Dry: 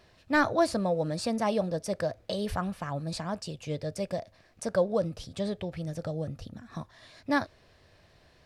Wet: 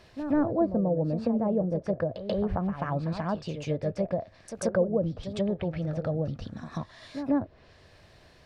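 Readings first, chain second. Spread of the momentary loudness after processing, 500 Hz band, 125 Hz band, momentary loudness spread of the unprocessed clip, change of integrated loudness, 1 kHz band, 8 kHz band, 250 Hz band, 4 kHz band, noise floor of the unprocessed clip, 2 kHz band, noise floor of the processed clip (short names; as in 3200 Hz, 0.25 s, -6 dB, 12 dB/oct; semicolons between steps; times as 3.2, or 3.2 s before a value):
12 LU, +1.5 dB, +4.5 dB, 15 LU, +1.5 dB, -3.0 dB, -5.0 dB, +4.0 dB, -7.0 dB, -61 dBFS, -9.0 dB, -57 dBFS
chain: treble ducked by the level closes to 480 Hz, closed at -26 dBFS; reverse echo 0.136 s -10 dB; gain +4 dB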